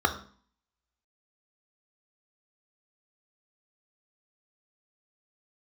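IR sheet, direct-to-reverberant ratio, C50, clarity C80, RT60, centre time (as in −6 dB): 6.0 dB, 12.0 dB, 15.5 dB, 0.45 s, 10 ms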